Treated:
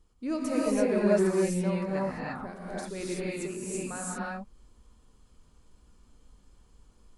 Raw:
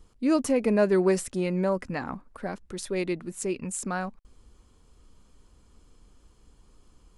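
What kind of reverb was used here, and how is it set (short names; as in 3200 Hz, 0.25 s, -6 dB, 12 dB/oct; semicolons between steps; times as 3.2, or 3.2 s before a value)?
non-linear reverb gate 0.36 s rising, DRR -6.5 dB; gain -9.5 dB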